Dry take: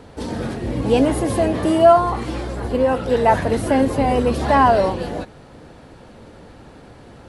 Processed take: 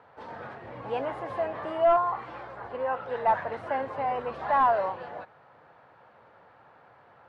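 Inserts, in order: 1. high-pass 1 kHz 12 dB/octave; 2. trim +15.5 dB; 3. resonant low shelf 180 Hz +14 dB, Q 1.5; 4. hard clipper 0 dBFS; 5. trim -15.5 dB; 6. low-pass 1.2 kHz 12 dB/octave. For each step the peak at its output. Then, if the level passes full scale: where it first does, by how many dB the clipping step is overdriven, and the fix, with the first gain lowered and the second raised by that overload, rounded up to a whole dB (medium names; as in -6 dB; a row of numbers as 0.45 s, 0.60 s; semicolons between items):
-8.0 dBFS, +7.5 dBFS, +7.0 dBFS, 0.0 dBFS, -15.5 dBFS, -15.0 dBFS; step 2, 7.0 dB; step 2 +8.5 dB, step 5 -8.5 dB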